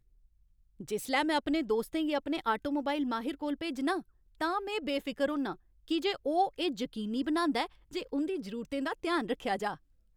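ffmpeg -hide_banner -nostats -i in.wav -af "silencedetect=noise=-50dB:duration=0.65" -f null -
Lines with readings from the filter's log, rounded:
silence_start: 0.00
silence_end: 0.80 | silence_duration: 0.80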